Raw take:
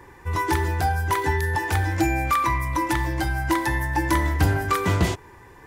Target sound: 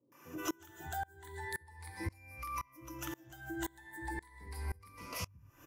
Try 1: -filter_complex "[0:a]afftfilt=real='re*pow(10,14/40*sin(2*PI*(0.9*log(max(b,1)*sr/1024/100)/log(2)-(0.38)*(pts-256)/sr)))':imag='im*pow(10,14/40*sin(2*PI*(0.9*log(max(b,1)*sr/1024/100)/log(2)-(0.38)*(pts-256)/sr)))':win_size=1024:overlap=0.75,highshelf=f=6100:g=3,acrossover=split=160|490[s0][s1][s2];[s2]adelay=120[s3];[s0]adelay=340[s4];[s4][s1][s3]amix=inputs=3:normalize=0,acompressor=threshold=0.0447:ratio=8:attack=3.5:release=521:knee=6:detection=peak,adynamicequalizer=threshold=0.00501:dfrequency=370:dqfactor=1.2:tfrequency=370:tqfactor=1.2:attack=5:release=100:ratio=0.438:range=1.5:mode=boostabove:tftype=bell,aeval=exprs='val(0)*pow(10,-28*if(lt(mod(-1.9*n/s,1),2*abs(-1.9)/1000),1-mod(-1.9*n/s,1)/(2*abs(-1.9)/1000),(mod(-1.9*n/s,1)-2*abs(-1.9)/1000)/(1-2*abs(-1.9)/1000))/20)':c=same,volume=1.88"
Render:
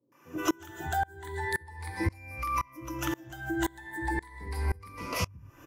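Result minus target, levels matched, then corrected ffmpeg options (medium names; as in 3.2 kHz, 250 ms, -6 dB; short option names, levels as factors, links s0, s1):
compression: peak gain reduction -10.5 dB; 8 kHz band -4.0 dB
-filter_complex "[0:a]afftfilt=real='re*pow(10,14/40*sin(2*PI*(0.9*log(max(b,1)*sr/1024/100)/log(2)-(0.38)*(pts-256)/sr)))':imag='im*pow(10,14/40*sin(2*PI*(0.9*log(max(b,1)*sr/1024/100)/log(2)-(0.38)*(pts-256)/sr)))':win_size=1024:overlap=0.75,highshelf=f=6100:g=11,acrossover=split=160|490[s0][s1][s2];[s2]adelay=120[s3];[s0]adelay=340[s4];[s4][s1][s3]amix=inputs=3:normalize=0,acompressor=threshold=0.0126:ratio=8:attack=3.5:release=521:knee=6:detection=peak,adynamicequalizer=threshold=0.00501:dfrequency=370:dqfactor=1.2:tfrequency=370:tqfactor=1.2:attack=5:release=100:ratio=0.438:range=1.5:mode=boostabove:tftype=bell,aeval=exprs='val(0)*pow(10,-28*if(lt(mod(-1.9*n/s,1),2*abs(-1.9)/1000),1-mod(-1.9*n/s,1)/(2*abs(-1.9)/1000),(mod(-1.9*n/s,1)-2*abs(-1.9)/1000)/(1-2*abs(-1.9)/1000))/20)':c=same,volume=1.88"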